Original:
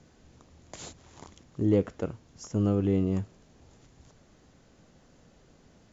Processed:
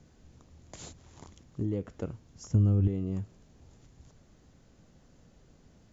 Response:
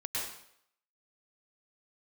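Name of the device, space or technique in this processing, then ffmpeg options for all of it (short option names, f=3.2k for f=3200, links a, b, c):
ASMR close-microphone chain: -filter_complex "[0:a]lowshelf=f=200:g=8,acompressor=threshold=-23dB:ratio=5,highshelf=f=6.9k:g=4.5,asettb=1/sr,asplit=3[a][b][c];[a]atrim=end=2.484[d];[b]atrim=start=2.48:end=2.88,asetpts=PTS-STARTPTS,afade=t=in:d=0.004:c=qsin,afade=t=out:st=0.396:d=0.004:c=qsin,equalizer=f=67:w=0.56:g=14[e];[c]atrim=start=2.876[f];[d][e]acrossfade=d=0.004:c1=hsin:c2=qsin[g];[g][f]acrossfade=d=0.004:c1=qsin:c2=hsin,volume=-5dB"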